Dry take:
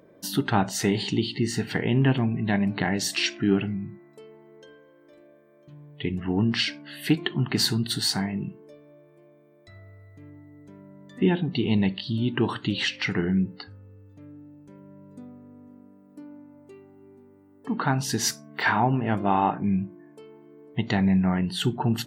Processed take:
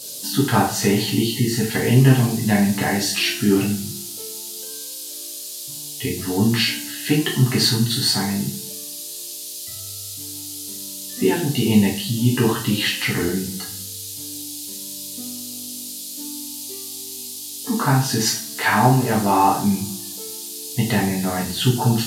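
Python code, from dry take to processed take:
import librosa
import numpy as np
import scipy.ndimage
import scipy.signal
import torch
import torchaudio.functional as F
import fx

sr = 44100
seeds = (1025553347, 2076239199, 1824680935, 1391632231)

y = fx.dmg_noise_band(x, sr, seeds[0], low_hz=3500.0, high_hz=14000.0, level_db=-39.0)
y = fx.rev_double_slope(y, sr, seeds[1], early_s=0.41, late_s=1.6, knee_db=-24, drr_db=-4.5)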